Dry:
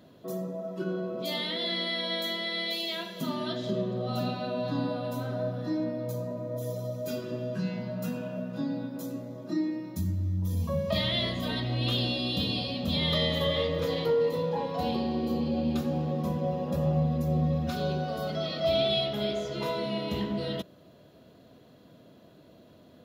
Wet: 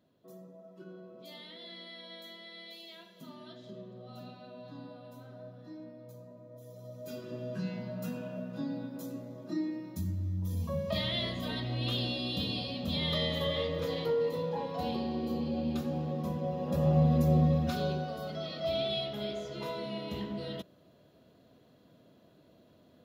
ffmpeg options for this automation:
-af "volume=3dB,afade=t=in:st=6.7:d=0.86:silence=0.251189,afade=t=in:st=16.54:d=0.64:silence=0.421697,afade=t=out:st=17.18:d=1:silence=0.334965"

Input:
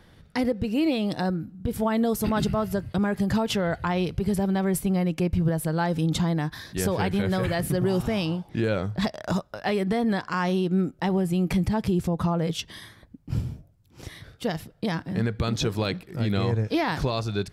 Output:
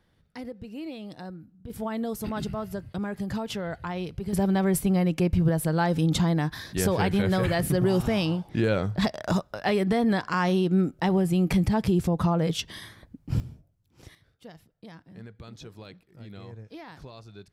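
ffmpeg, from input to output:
-af "asetnsamples=n=441:p=0,asendcmd='1.7 volume volume -7dB;4.33 volume volume 1dB;13.4 volume volume -9dB;14.15 volume volume -18.5dB',volume=-13.5dB"

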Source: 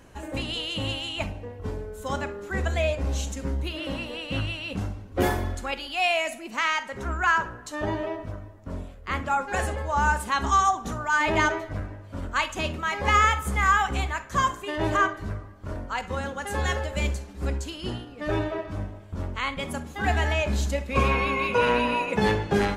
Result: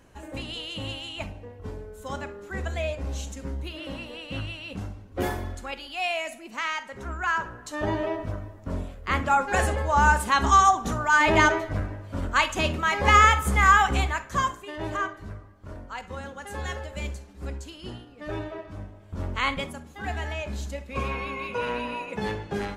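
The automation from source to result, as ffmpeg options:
-af "volume=14dB,afade=t=in:st=7.28:d=1.01:silence=0.398107,afade=t=out:st=13.93:d=0.73:silence=0.316228,afade=t=in:st=18.97:d=0.54:silence=0.298538,afade=t=out:st=19.51:d=0.22:silence=0.266073"

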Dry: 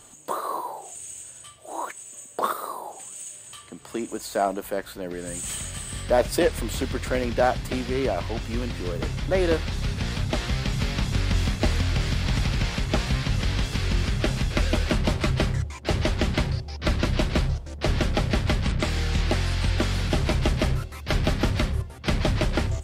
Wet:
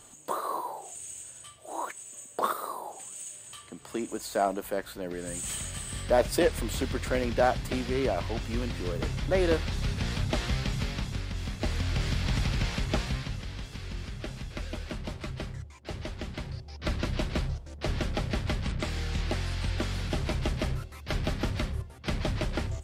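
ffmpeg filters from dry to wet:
-af "volume=12dB,afade=t=out:st=10.51:d=0.83:silence=0.334965,afade=t=in:st=11.34:d=0.73:silence=0.375837,afade=t=out:st=12.89:d=0.54:silence=0.334965,afade=t=in:st=16.4:d=0.47:silence=0.473151"

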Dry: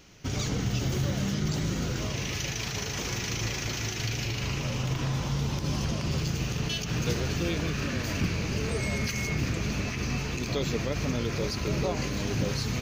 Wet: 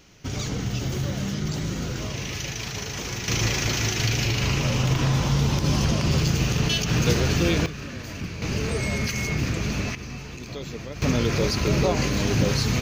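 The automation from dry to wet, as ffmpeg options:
-af "asetnsamples=n=441:p=0,asendcmd='3.28 volume volume 7.5dB;7.66 volume volume -4.5dB;8.42 volume volume 3.5dB;9.95 volume volume -5.5dB;11.02 volume volume 7dB',volume=1dB"

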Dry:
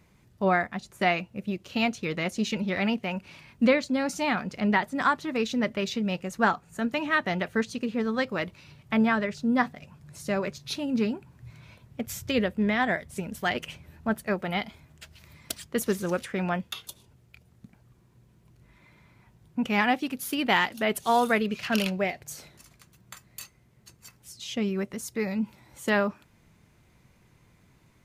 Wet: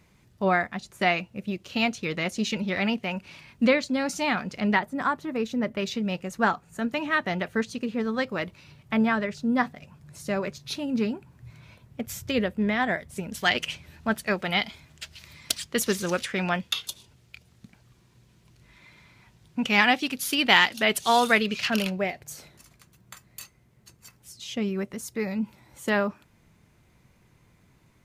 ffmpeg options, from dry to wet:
-af "asetnsamples=n=441:p=0,asendcmd='4.79 equalizer g -7.5;5.77 equalizer g 0;13.32 equalizer g 10;21.7 equalizer g -0.5',equalizer=f=4.3k:t=o:w=2.6:g=3"

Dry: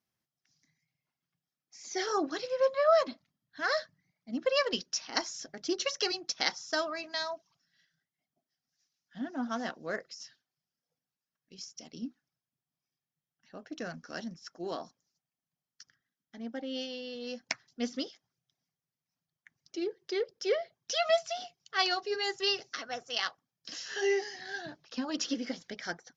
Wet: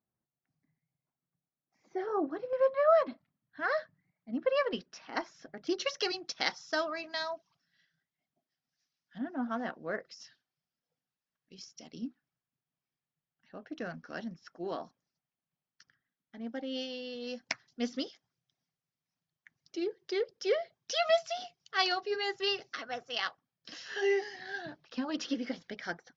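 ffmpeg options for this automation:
-af "asetnsamples=n=441:p=0,asendcmd='2.53 lowpass f 2100;5.67 lowpass f 4400;9.18 lowpass f 2200;10.05 lowpass f 4700;12.07 lowpass f 3200;16.47 lowpass f 5800;21.92 lowpass f 3800',lowpass=1k"

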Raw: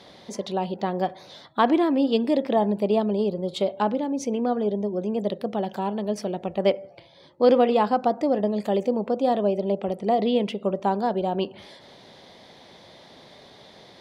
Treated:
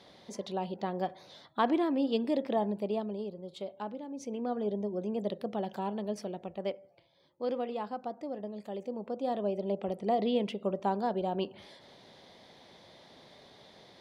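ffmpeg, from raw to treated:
-af "volume=9dB,afade=t=out:st=2.51:d=0.83:silence=0.421697,afade=t=in:st=4.05:d=0.68:silence=0.398107,afade=t=out:st=5.98:d=0.83:silence=0.375837,afade=t=in:st=8.75:d=1.14:silence=0.354813"

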